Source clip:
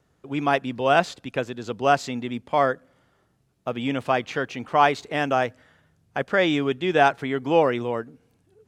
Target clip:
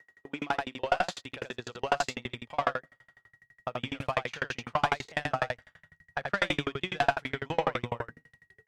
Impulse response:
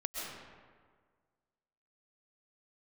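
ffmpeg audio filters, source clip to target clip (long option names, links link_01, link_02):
-filter_complex "[0:a]asubboost=boost=11:cutoff=98,asplit=2[link_01][link_02];[link_02]highpass=frequency=720:poles=1,volume=18dB,asoftclip=type=tanh:threshold=-4dB[link_03];[link_01][link_03]amix=inputs=2:normalize=0,lowpass=frequency=6500:poles=1,volume=-6dB,asplit=2[link_04][link_05];[link_05]aecho=0:1:26|76:0.188|0.708[link_06];[link_04][link_06]amix=inputs=2:normalize=0,aeval=exprs='val(0)+0.00708*sin(2*PI*1900*n/s)':channel_layout=same,aeval=exprs='val(0)*pow(10,-37*if(lt(mod(12*n/s,1),2*abs(12)/1000),1-mod(12*n/s,1)/(2*abs(12)/1000),(mod(12*n/s,1)-2*abs(12)/1000)/(1-2*abs(12)/1000))/20)':channel_layout=same,volume=-6.5dB"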